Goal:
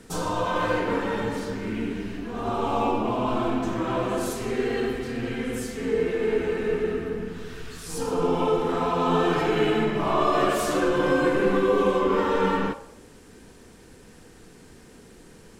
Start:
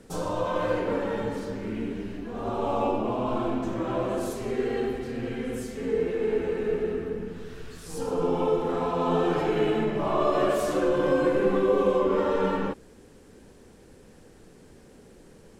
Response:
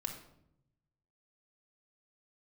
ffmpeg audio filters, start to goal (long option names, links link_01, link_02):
-filter_complex "[0:a]asplit=2[link_01][link_02];[link_02]highpass=frequency=520:width=0.5412,highpass=frequency=520:width=1.3066[link_03];[1:a]atrim=start_sample=2205[link_04];[link_03][link_04]afir=irnorm=-1:irlink=0,volume=-3dB[link_05];[link_01][link_05]amix=inputs=2:normalize=0,volume=2.5dB"